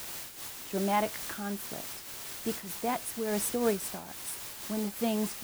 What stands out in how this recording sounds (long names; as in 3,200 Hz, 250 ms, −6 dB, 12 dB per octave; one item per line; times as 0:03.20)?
a quantiser's noise floor 6 bits, dither triangular
amplitude modulation by smooth noise